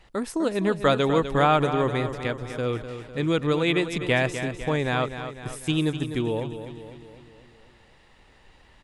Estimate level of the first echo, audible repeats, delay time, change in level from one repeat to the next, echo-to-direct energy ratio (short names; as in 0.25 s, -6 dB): -10.0 dB, 5, 0.251 s, -5.5 dB, -8.5 dB